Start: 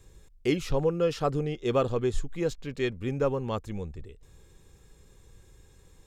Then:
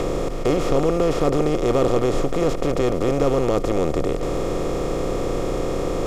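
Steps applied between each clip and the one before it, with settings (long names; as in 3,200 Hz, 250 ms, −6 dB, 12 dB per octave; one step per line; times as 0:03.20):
compressor on every frequency bin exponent 0.2
dynamic equaliser 2,300 Hz, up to −7 dB, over −39 dBFS, Q 0.73
level +1 dB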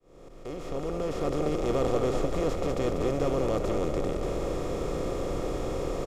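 fade in at the beginning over 1.57 s
on a send: echo with shifted repeats 192 ms, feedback 54%, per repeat +30 Hz, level −7 dB
on the sum: level −8.5 dB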